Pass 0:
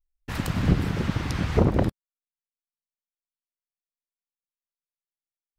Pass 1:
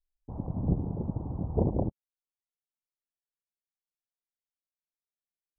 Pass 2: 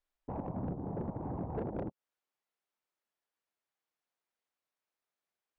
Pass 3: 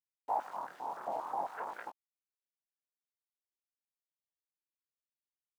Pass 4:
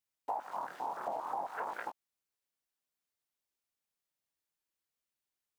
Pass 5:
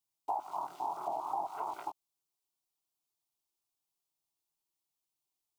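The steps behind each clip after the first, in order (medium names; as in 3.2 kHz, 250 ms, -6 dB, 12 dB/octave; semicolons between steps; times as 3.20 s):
steep low-pass 900 Hz 48 dB/octave; trim -6.5 dB
compression 10:1, threshold -33 dBFS, peak gain reduction 13.5 dB; overdrive pedal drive 24 dB, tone 1 kHz, clips at -23 dBFS; trim -3.5 dB
small samples zeroed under -55 dBFS; chorus 0.48 Hz, delay 17 ms, depth 7.6 ms; step-sequenced high-pass 7.5 Hz 730–1600 Hz; trim +6 dB
compression, threshold -39 dBFS, peak gain reduction 10.5 dB; trim +5 dB
static phaser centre 340 Hz, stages 8; trim +2.5 dB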